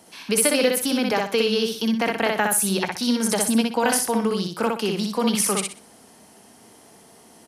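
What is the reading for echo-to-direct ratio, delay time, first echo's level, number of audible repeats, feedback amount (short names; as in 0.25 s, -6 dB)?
-2.5 dB, 62 ms, -3.0 dB, 3, 28%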